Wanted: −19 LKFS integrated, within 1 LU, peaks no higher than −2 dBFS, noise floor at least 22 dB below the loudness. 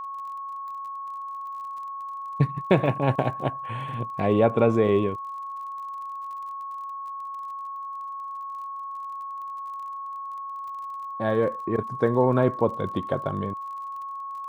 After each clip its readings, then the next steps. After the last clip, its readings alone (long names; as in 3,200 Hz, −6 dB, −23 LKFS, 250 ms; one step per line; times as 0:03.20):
crackle rate 33 per second; interfering tone 1,100 Hz; level of the tone −32 dBFS; integrated loudness −28.0 LKFS; sample peak −6.0 dBFS; target loudness −19.0 LKFS
→ click removal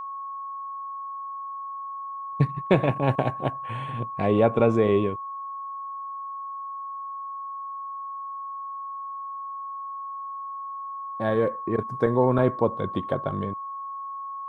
crackle rate 0 per second; interfering tone 1,100 Hz; level of the tone −32 dBFS
→ notch filter 1,100 Hz, Q 30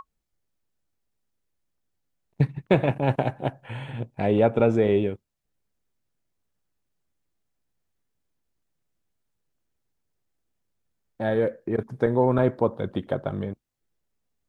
interfering tone none found; integrated loudness −24.5 LKFS; sample peak −6.0 dBFS; target loudness −19.0 LKFS
→ level +5.5 dB
brickwall limiter −2 dBFS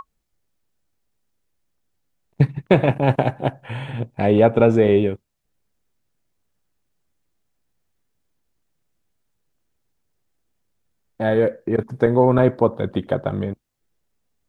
integrated loudness −19.5 LKFS; sample peak −2.0 dBFS; background noise floor −73 dBFS